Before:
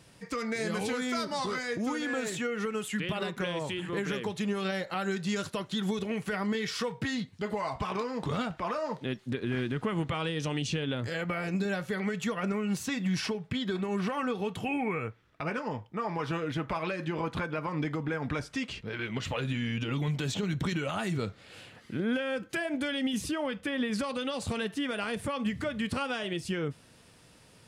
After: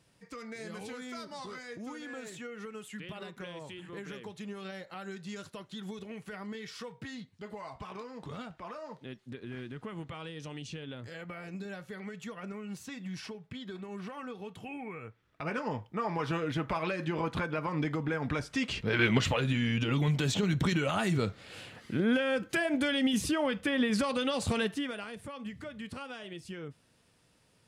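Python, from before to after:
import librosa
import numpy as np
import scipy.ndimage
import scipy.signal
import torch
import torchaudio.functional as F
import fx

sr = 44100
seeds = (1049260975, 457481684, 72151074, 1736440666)

y = fx.gain(x, sr, db=fx.line((15.01, -10.5), (15.6, 0.0), (18.48, 0.0), (19.08, 10.5), (19.39, 2.5), (24.64, 2.5), (25.11, -10.0)))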